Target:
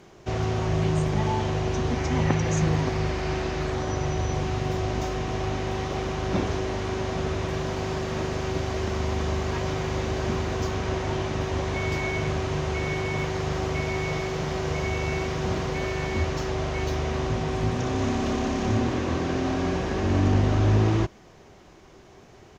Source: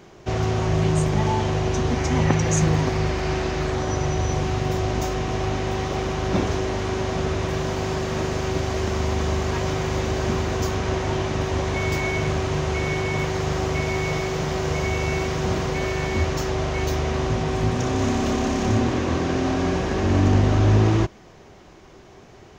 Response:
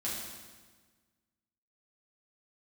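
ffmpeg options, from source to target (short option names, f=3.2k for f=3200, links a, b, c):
-filter_complex "[0:a]acrossover=split=6000[a][b];[b]acompressor=threshold=-51dB:ratio=4:attack=1:release=60[c];[a][c]amix=inputs=2:normalize=0,aresample=32000,aresample=44100,highshelf=f=12k:g=6.5,volume=-3.5dB"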